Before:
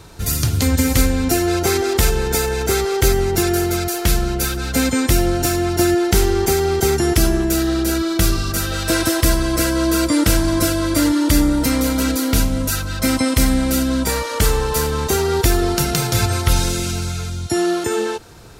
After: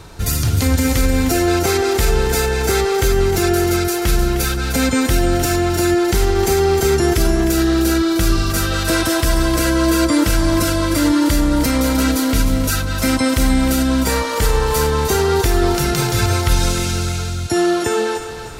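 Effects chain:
brickwall limiter −9 dBFS, peak gain reduction 6 dB
low-shelf EQ 500 Hz −7.5 dB
reversed playback
upward compression, threshold −35 dBFS
reversed playback
spectral tilt −1.5 dB per octave
on a send: feedback echo with a high-pass in the loop 307 ms, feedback 41%, high-pass 520 Hz, level −9 dB
on the sum: level +5 dB

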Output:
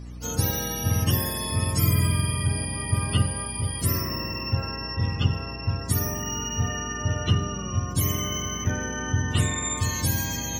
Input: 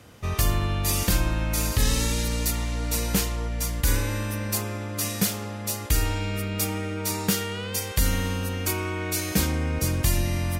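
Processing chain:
frequency axis turned over on the octave scale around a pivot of 750 Hz
mains hum 60 Hz, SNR 12 dB
four-comb reverb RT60 0.75 s, combs from 31 ms, DRR 16.5 dB

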